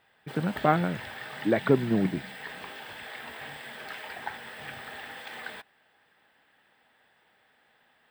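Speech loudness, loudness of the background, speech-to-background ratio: −27.5 LKFS, −39.5 LKFS, 12.0 dB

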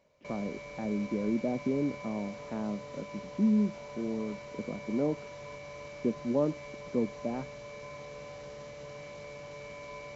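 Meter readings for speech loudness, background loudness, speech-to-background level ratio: −33.5 LKFS, −45.0 LKFS, 11.5 dB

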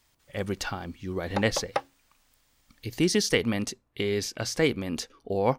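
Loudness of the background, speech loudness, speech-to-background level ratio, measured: −34.5 LKFS, −28.5 LKFS, 6.0 dB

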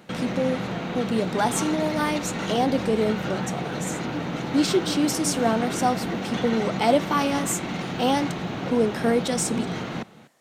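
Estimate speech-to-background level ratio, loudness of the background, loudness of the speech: 4.0 dB, −29.5 LKFS, −25.5 LKFS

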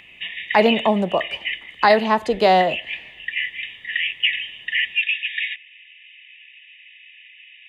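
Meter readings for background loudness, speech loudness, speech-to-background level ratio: −24.5 LKFS, −18.5 LKFS, 6.0 dB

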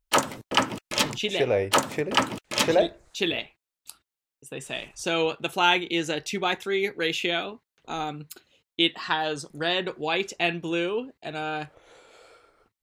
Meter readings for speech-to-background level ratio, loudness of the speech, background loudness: −1.0 dB, −27.0 LKFS, −26.0 LKFS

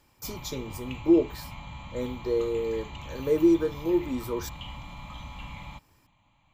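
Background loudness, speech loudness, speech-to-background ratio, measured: −42.0 LKFS, −27.5 LKFS, 14.5 dB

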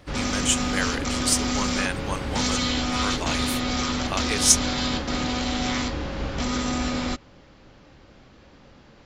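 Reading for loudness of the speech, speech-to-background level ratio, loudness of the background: −26.0 LKFS, 0.0 dB, −26.0 LKFS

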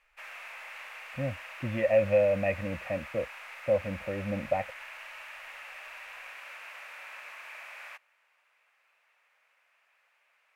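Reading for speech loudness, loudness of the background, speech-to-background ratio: −30.0 LKFS, −43.5 LKFS, 13.5 dB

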